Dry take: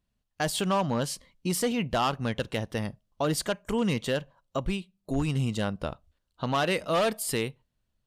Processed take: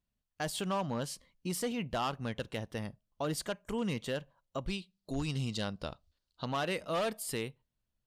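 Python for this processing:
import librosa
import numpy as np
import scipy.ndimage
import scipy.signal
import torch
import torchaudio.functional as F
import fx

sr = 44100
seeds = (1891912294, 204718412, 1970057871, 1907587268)

y = fx.peak_eq(x, sr, hz=4600.0, db=11.5, octaves=0.94, at=(4.67, 6.45))
y = F.gain(torch.from_numpy(y), -7.5).numpy()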